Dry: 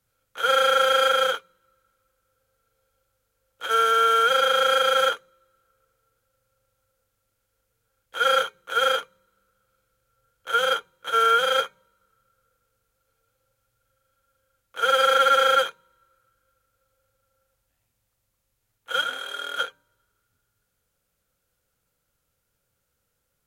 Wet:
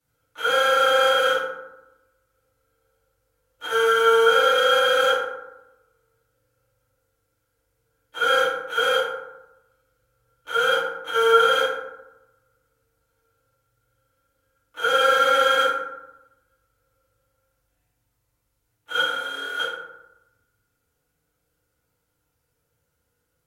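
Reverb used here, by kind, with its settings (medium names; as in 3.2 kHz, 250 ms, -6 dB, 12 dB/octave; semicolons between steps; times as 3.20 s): FDN reverb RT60 0.94 s, low-frequency decay 1.2×, high-frequency decay 0.45×, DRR -10 dB; trim -8.5 dB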